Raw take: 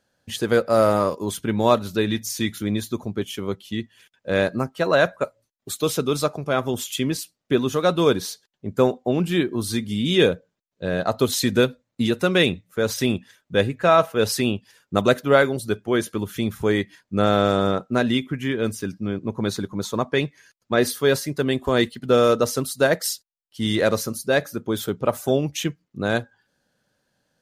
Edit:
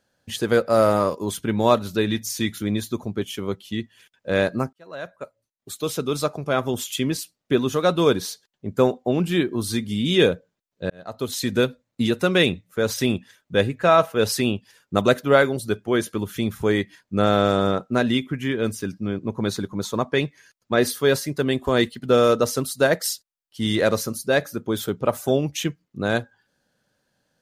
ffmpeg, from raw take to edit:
-filter_complex "[0:a]asplit=3[s0][s1][s2];[s0]atrim=end=4.73,asetpts=PTS-STARTPTS,afade=t=out:st=4.726:d=0.004:c=hsin[s3];[s1]atrim=start=4.73:end=10.9,asetpts=PTS-STARTPTS,afade=t=in:d=1.76,afade=t=out:st=6.166:d=0.004:c=hsin[s4];[s2]atrim=start=10.9,asetpts=PTS-STARTPTS,afade=t=in:d=1.19:c=qsin[s5];[s3][s4][s5]concat=n=3:v=0:a=1"

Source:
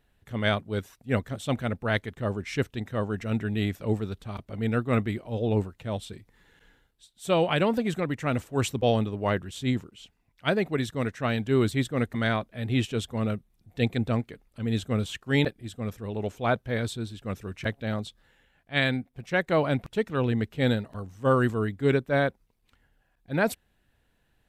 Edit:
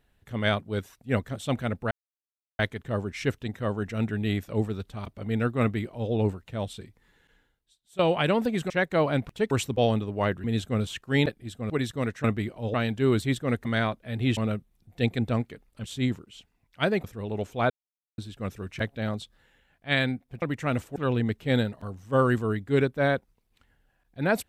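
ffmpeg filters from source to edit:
-filter_complex "[0:a]asplit=16[s0][s1][s2][s3][s4][s5][s6][s7][s8][s9][s10][s11][s12][s13][s14][s15];[s0]atrim=end=1.91,asetpts=PTS-STARTPTS,afade=t=out:st=1.906:d=0.004:c=hsin,apad=pad_dur=0.68[s16];[s1]atrim=start=1.91:end=7.31,asetpts=PTS-STARTPTS,afade=t=in:d=0.004:c=hsin,afade=t=out:st=4.09:d=1.31:silence=0.149624[s17];[s2]atrim=start=7.31:end=8.022,asetpts=PTS-STARTPTS,afade=t=in:d=0.004:c=hsin:silence=0.149624[s18];[s3]atrim=start=19.268:end=20.082[s19];[s4]atrim=start=8.558:end=9.492[s20];[s5]atrim=start=14.628:end=15.892[s21];[s6]atrim=start=10.688:end=11.232[s22];[s7]atrim=start=4.928:end=5.432[s23];[s8]atrim=start=11.228:end=12.862[s24];[s9]atrim=start=13.158:end=14.632[s25];[s10]atrim=start=9.488:end=10.692[s26];[s11]atrim=start=15.888:end=16.55,asetpts=PTS-STARTPTS,afade=t=out:st=0.658:d=0.004:c=hsin[s27];[s12]atrim=start=16.55:end=17.03,asetpts=PTS-STARTPTS,volume=0[s28];[s13]atrim=start=17.03:end=19.272,asetpts=PTS-STARTPTS,afade=t=in:d=0.004:c=hsin[s29];[s14]atrim=start=8.018:end=8.562[s30];[s15]atrim=start=20.078[s31];[s16][s17][s18]concat=n=3:v=0:a=1[s32];[s32][s19]acrossfade=d=0.004:c1=hsin:c2=hsin[s33];[s33][s20]acrossfade=d=0.004:c1=hsin:c2=hsin[s34];[s34][s21]acrossfade=d=0.004:c1=hsin:c2=hsin[s35];[s35][s22]acrossfade=d=0.004:c1=hsin:c2=hsin[s36];[s36][s23]acrossfade=d=0.004:c1=hsin:c2=hsin[s37];[s37][s24]acrossfade=d=0.004:c1=hsin:c2=hsin[s38];[s38][s25]acrossfade=d=0.004:c1=hsin:c2=hsin[s39];[s39][s26]acrossfade=d=0.004:c1=hsin:c2=hsin[s40];[s27][s28][s29]concat=n=3:v=0:a=1[s41];[s40][s41]acrossfade=d=0.004:c1=hsin:c2=hsin[s42];[s42][s30]acrossfade=d=0.004:c1=hsin:c2=hsin[s43];[s43][s31]acrossfade=d=0.004:c1=hsin:c2=hsin"

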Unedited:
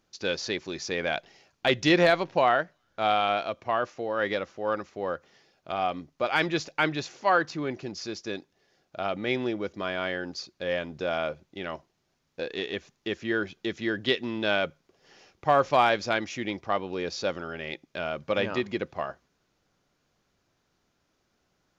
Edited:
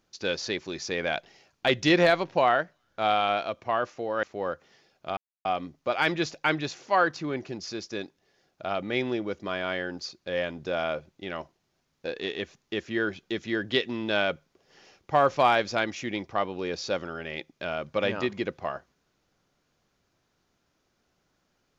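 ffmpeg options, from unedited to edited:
-filter_complex "[0:a]asplit=3[s0][s1][s2];[s0]atrim=end=4.232[s3];[s1]atrim=start=4.848:end=5.79,asetpts=PTS-STARTPTS,afade=t=out:st=0.938:d=0.004:c=hsin,apad=pad_dur=0.28[s4];[s2]atrim=start=5.79,asetpts=PTS-STARTPTS,afade=t=in:d=0.004:c=hsin[s5];[s4][s5]concat=n=2:v=0:a=1[s6];[s3][s6]acrossfade=d=0.004:c1=hsin:c2=hsin"

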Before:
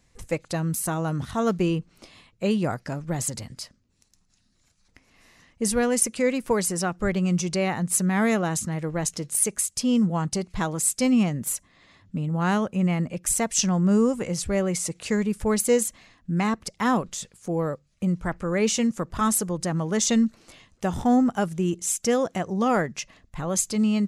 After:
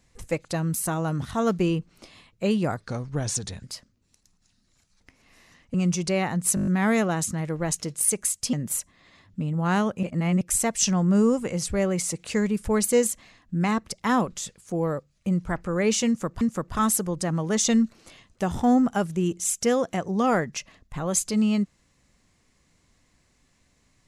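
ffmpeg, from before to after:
-filter_complex "[0:a]asplit=14[s0][s1][s2][s3][s4][s5][s6][s7][s8][s9][s10][s11][s12][s13];[s0]atrim=end=2.774[s14];[s1]atrim=start=2.77:end=3.51,asetpts=PTS-STARTPTS,asetrate=37926,aresample=44100[s15];[s2]atrim=start=3.506:end=5.622[s16];[s3]atrim=start=7.198:end=8.032[s17];[s4]atrim=start=8.008:end=8.032[s18];[s5]atrim=start=8.008:end=8.032[s19];[s6]atrim=start=8.008:end=8.032[s20];[s7]atrim=start=8.008:end=8.032[s21];[s8]atrim=start=8.008:end=8.032[s22];[s9]atrim=start=8.008:end=9.872[s23];[s10]atrim=start=11.288:end=12.792[s24];[s11]atrim=start=12.788:end=13.172,asetpts=PTS-STARTPTS,areverse[s25];[s12]atrim=start=13.168:end=19.172[s26];[s13]atrim=start=18.828[s27];[s14][s15]acrossfade=d=0.004:c1=hsin:c2=hsin[s28];[s28][s16]acrossfade=d=0.004:c1=hsin:c2=hsin[s29];[s29][s17]acrossfade=d=0.004:c1=hsin:c2=hsin[s30];[s30][s18]acrossfade=d=0.004:c1=hsin:c2=hsin[s31];[s31][s19]acrossfade=d=0.004:c1=hsin:c2=hsin[s32];[s32][s20]acrossfade=d=0.004:c1=hsin:c2=hsin[s33];[s33][s21]acrossfade=d=0.004:c1=hsin:c2=hsin[s34];[s34][s22]acrossfade=d=0.004:c1=hsin:c2=hsin[s35];[s35][s23]acrossfade=d=0.004:c1=hsin:c2=hsin[s36];[s36][s24]acrossfade=d=0.004:c1=hsin:c2=hsin[s37];[s37][s25]acrossfade=d=0.004:c1=hsin:c2=hsin[s38];[s38][s26]acrossfade=d=0.004:c1=hsin:c2=hsin[s39];[s39][s27]acrossfade=d=0.004:c1=hsin:c2=hsin"

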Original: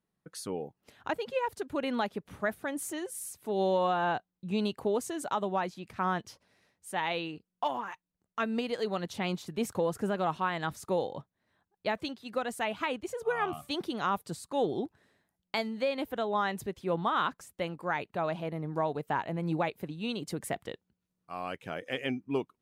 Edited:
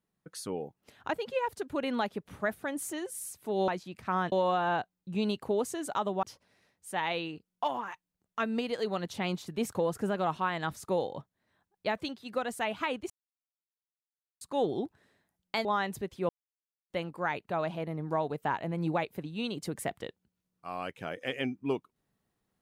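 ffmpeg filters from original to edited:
-filter_complex "[0:a]asplit=9[s0][s1][s2][s3][s4][s5][s6][s7][s8];[s0]atrim=end=3.682[s9];[s1]atrim=start=5.588:end=6.232[s10];[s2]atrim=start=3.678:end=5.592[s11];[s3]atrim=start=6.228:end=13.1,asetpts=PTS-STARTPTS,afade=t=out:st=6.868:d=0.004:c=hsin[s12];[s4]atrim=start=13.1:end=14.41,asetpts=PTS-STARTPTS,volume=0[s13];[s5]atrim=start=14.41:end=15.652,asetpts=PTS-STARTPTS,afade=t=in:d=0.004:c=hsin[s14];[s6]atrim=start=16.298:end=16.94,asetpts=PTS-STARTPTS,afade=t=out:st=0.638:d=0.004:c=hsin[s15];[s7]atrim=start=16.94:end=17.55,asetpts=PTS-STARTPTS,volume=0[s16];[s8]atrim=start=17.55,asetpts=PTS-STARTPTS,afade=t=in:d=0.004:c=hsin[s17];[s9][s10]acrossfade=d=0.004:c1=hsin:c2=hsin[s18];[s18][s11]acrossfade=d=0.004:c1=hsin:c2=hsin[s19];[s12][s13][s14]concat=n=3:v=0:a=1[s20];[s19][s20]acrossfade=d=0.004:c1=hsin:c2=hsin[s21];[s15][s16][s17]concat=n=3:v=0:a=1[s22];[s21][s22]acrossfade=d=0.004:c1=hsin:c2=hsin"

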